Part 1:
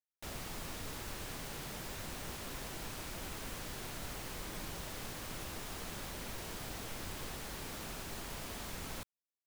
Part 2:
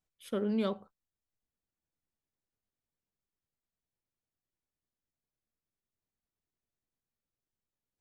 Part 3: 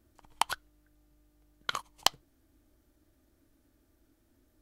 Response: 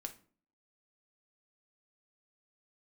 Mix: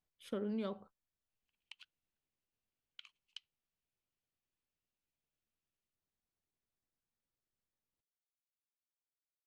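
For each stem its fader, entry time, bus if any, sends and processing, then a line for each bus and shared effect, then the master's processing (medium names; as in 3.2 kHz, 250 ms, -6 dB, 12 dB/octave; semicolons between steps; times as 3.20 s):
mute
-2.0 dB, 0.00 s, no send, treble shelf 8 kHz -10.5 dB; compression 4:1, threshold -34 dBFS, peak gain reduction 6.5 dB
-8.5 dB, 1.30 s, no send, valve stage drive 18 dB, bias 0.65; ladder band-pass 2.9 kHz, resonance 70%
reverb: none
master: none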